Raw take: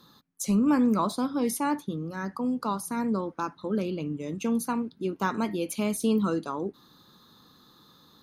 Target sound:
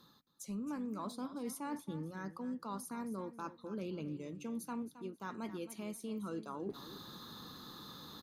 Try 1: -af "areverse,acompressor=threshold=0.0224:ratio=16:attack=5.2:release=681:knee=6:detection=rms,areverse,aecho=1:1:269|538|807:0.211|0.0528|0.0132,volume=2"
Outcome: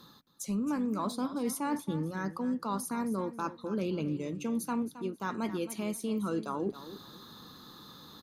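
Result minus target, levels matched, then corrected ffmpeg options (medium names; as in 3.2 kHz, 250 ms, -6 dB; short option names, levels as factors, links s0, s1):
compression: peak gain reduction -9 dB
-af "areverse,acompressor=threshold=0.0075:ratio=16:attack=5.2:release=681:knee=6:detection=rms,areverse,aecho=1:1:269|538|807:0.211|0.0528|0.0132,volume=2"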